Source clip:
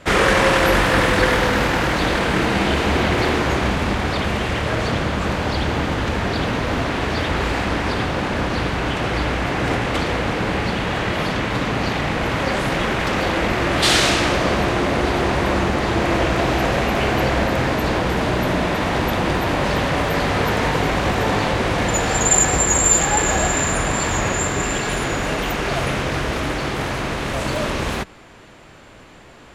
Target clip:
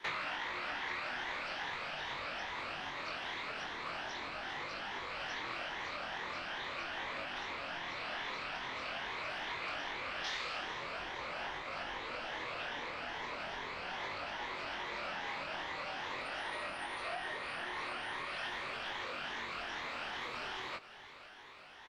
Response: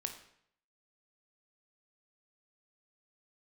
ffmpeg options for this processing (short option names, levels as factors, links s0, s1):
-filter_complex "[0:a]afftfilt=real='re*pow(10,7/40*sin(2*PI*(1.3*log(max(b,1)*sr/1024/100)/log(2)-(1.8)*(pts-256)/sr)))':imag='im*pow(10,7/40*sin(2*PI*(1.3*log(max(b,1)*sr/1024/100)/log(2)-(1.8)*(pts-256)/sr)))':win_size=1024:overlap=0.75,acrusher=bits=8:mix=0:aa=0.5,equalizer=f=68:w=3.2:g=-10,acrossover=split=5300[s0][s1];[s1]acompressor=threshold=0.0126:ratio=4:attack=1:release=60[s2];[s0][s2]amix=inputs=2:normalize=0,afreqshift=-310,asetrate=59535,aresample=44100,acompressor=threshold=0.0447:ratio=8,acrossover=split=580 5000:gain=0.112 1 0.0794[s3][s4][s5];[s3][s4][s5]amix=inputs=3:normalize=0,asplit=2[s6][s7];[s7]aecho=0:1:503:0.133[s8];[s6][s8]amix=inputs=2:normalize=0,flanger=delay=20:depth=5:speed=0.42,volume=0.668"